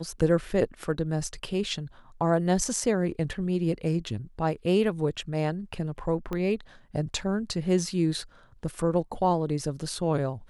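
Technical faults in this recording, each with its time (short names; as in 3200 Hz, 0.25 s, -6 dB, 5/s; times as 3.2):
6.33 pop -19 dBFS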